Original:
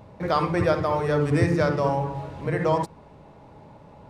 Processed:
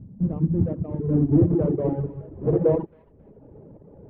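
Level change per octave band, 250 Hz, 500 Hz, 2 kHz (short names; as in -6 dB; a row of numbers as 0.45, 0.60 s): +4.5 dB, -1.0 dB, under -20 dB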